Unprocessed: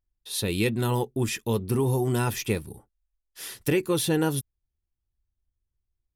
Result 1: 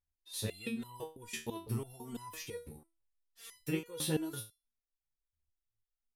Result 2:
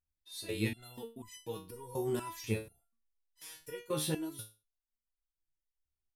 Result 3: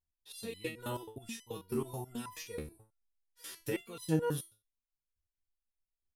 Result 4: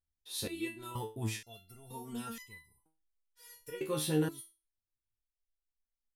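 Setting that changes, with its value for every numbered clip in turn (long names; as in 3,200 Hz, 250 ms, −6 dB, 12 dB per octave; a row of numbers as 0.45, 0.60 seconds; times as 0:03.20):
step-sequenced resonator, speed: 6, 4.1, 9.3, 2.1 Hertz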